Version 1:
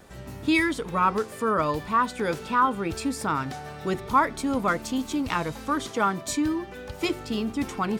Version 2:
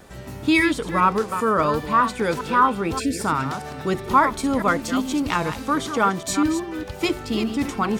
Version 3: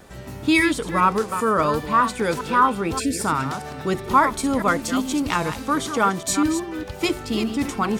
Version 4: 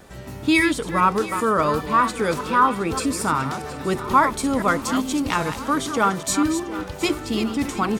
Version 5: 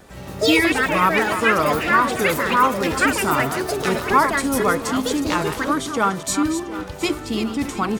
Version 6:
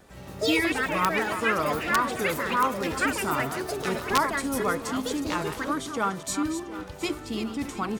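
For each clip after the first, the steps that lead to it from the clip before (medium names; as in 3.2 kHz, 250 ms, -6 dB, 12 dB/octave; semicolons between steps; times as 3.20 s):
chunks repeated in reverse 201 ms, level -9 dB; spectral selection erased 2.99–3.20 s, 670–1400 Hz; trim +4 dB
dynamic bell 9.7 kHz, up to +5 dB, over -43 dBFS, Q 0.74
feedback delay 718 ms, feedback 55%, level -16 dB
ever faster or slower copies 87 ms, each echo +6 st, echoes 2
integer overflow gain 5 dB; trim -7.5 dB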